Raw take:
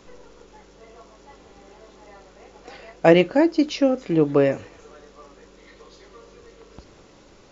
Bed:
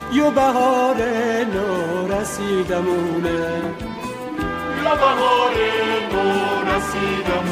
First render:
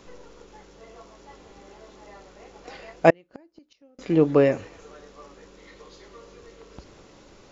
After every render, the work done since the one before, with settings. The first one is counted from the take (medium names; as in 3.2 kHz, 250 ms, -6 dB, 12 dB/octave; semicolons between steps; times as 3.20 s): 3.10–3.99 s: inverted gate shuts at -19 dBFS, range -37 dB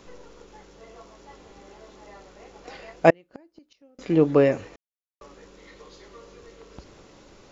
4.76–5.21 s: mute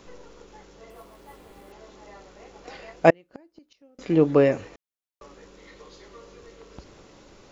0.90–1.72 s: careless resampling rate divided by 4×, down filtered, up hold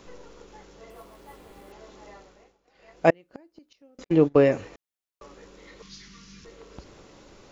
2.08–3.23 s: dip -23.5 dB, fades 0.49 s; 4.04–4.53 s: gate -25 dBFS, range -48 dB; 5.82–6.45 s: FFT filter 100 Hz 0 dB, 200 Hz +10 dB, 290 Hz -5 dB, 540 Hz -24 dB, 1.5 kHz 0 dB, 2.2 kHz +4 dB, 3.8 kHz +5 dB, 5.7 kHz +11 dB, 10 kHz -10 dB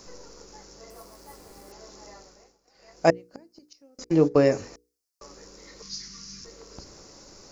resonant high shelf 4.1 kHz +7 dB, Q 3; hum notches 60/120/180/240/300/360/420/480 Hz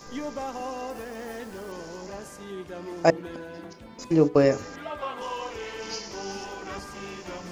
add bed -18 dB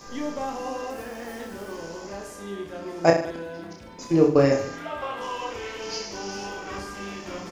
reverse bouncing-ball echo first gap 30 ms, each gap 1.15×, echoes 5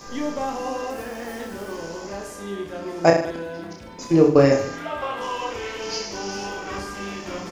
trim +3.5 dB; peak limiter -3 dBFS, peak gain reduction 2.5 dB